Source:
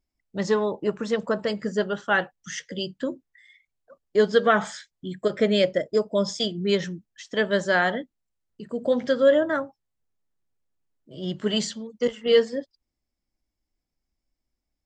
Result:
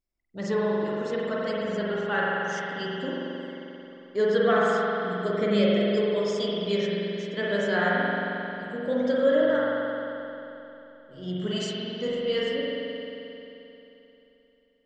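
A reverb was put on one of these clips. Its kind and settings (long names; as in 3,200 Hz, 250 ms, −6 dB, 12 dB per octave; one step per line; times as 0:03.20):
spring reverb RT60 3.3 s, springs 44 ms, chirp 70 ms, DRR −6 dB
level −8 dB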